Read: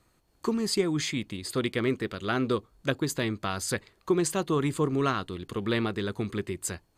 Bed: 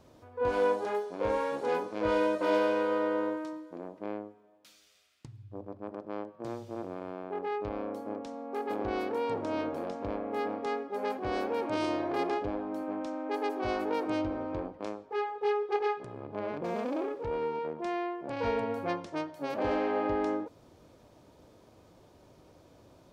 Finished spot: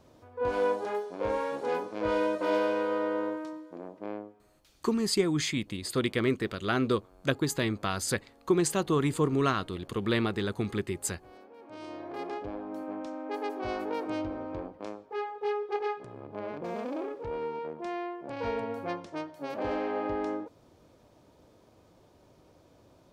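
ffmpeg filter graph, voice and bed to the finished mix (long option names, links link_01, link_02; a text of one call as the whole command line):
ffmpeg -i stem1.wav -i stem2.wav -filter_complex "[0:a]adelay=4400,volume=0dB[link_01];[1:a]volume=18dB,afade=type=out:start_time=4.19:duration=0.88:silence=0.1,afade=type=in:start_time=11.57:duration=1.22:silence=0.11885[link_02];[link_01][link_02]amix=inputs=2:normalize=0" out.wav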